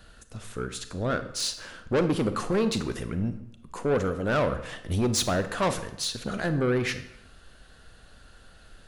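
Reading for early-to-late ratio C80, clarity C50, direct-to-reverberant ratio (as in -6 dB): 14.0 dB, 11.5 dB, 9.5 dB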